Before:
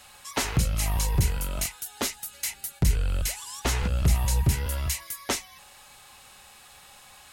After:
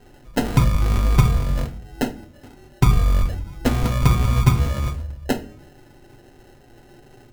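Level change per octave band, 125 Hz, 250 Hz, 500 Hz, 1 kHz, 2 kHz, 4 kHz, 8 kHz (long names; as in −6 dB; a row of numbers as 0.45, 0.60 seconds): +8.0, +10.5, +8.0, +7.5, +2.5, −1.0, −7.5 decibels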